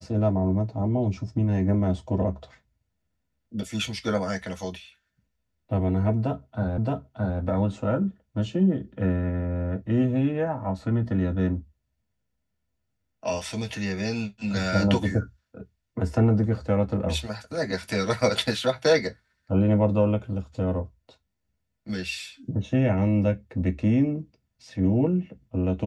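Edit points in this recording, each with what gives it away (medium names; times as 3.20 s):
6.78 s: repeat of the last 0.62 s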